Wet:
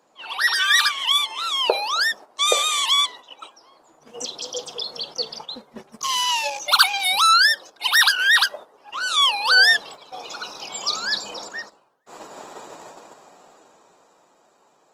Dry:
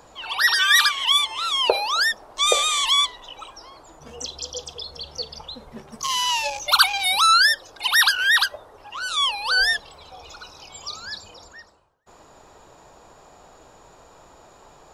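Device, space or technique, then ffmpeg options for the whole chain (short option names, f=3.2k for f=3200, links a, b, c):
video call: -af "highpass=f=180:w=0.5412,highpass=f=180:w=1.3066,dynaudnorm=f=110:g=31:m=14.5dB,agate=range=-9dB:threshold=-36dB:ratio=16:detection=peak,volume=-1dB" -ar 48000 -c:a libopus -b:a 20k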